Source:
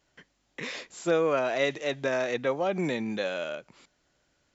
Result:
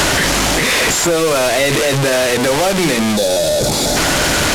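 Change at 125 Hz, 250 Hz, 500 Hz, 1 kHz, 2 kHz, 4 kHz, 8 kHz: +20.0 dB, +16.0 dB, +13.5 dB, +17.0 dB, +18.0 dB, +24.0 dB, can't be measured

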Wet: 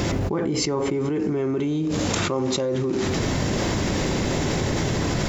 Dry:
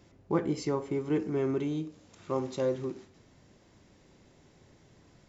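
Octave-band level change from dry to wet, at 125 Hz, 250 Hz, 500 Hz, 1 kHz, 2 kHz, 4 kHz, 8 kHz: +14.5 dB, +10.5 dB, +8.0 dB, +12.0 dB, +18.5 dB, +22.0 dB, can't be measured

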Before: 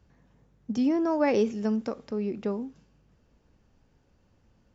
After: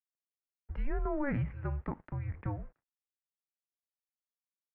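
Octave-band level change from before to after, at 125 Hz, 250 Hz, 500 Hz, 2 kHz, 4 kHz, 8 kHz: +6.0 dB, −13.0 dB, −14.0 dB, −5.0 dB, below −20 dB, can't be measured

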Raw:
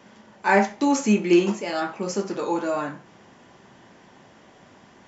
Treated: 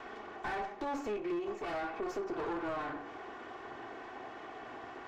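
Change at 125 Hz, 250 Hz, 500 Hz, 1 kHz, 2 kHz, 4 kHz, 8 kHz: −21.0 dB, −18.0 dB, −13.0 dB, −11.5 dB, −14.0 dB, −15.5 dB, can't be measured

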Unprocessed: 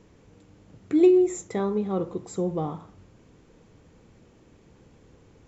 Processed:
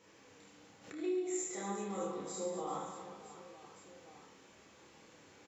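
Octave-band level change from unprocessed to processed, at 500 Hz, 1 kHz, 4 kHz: −15.5 dB, −6.0 dB, can't be measured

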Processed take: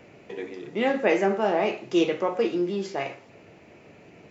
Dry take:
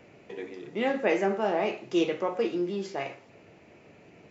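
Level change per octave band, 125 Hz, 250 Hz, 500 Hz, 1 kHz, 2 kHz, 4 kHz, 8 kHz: +3.5 dB, +3.5 dB, +3.5 dB, +3.5 dB, +3.5 dB, +3.5 dB, can't be measured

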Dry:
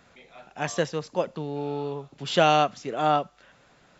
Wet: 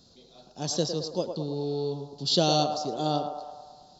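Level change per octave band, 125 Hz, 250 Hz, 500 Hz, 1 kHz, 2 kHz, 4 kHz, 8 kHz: +1.5 dB, +1.0 dB, −2.5 dB, −6.0 dB, −15.0 dB, +3.5 dB, can't be measured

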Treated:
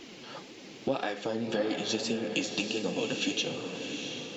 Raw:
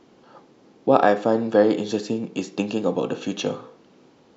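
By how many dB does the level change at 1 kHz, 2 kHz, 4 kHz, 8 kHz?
−15.0 dB, −3.5 dB, +4.0 dB, can't be measured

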